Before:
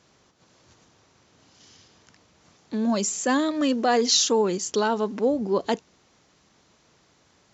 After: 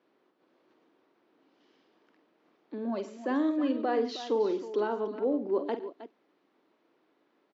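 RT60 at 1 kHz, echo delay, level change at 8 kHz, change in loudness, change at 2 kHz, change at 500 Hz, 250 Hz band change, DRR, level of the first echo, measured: no reverb, 48 ms, no reading, -7.5 dB, -11.0 dB, -5.0 dB, -6.0 dB, no reverb, -10.0 dB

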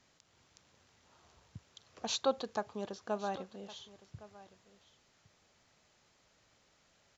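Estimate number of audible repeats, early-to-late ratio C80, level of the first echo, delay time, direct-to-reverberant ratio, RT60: 1, no reverb, -18.5 dB, 1112 ms, no reverb, no reverb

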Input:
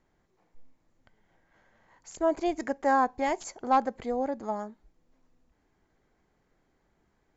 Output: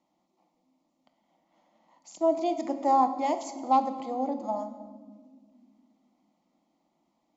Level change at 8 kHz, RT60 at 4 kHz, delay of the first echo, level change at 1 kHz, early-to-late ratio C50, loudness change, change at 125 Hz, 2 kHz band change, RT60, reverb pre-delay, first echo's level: no reading, 1.1 s, no echo, +2.0 dB, 11.0 dB, +1.0 dB, no reading, -12.5 dB, 1.6 s, 6 ms, no echo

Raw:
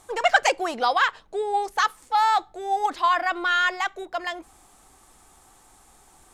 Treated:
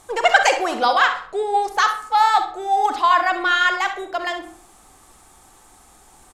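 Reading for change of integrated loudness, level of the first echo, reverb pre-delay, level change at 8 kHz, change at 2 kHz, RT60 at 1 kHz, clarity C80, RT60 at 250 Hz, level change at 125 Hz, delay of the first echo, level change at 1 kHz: +5.0 dB, -13.0 dB, 37 ms, +4.5 dB, +5.0 dB, 0.55 s, 13.5 dB, 0.60 s, no reading, 65 ms, +5.0 dB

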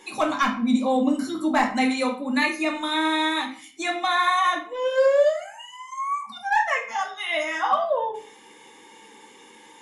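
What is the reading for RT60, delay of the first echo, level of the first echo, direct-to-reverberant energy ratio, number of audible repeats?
0.40 s, no echo, no echo, -0.5 dB, no echo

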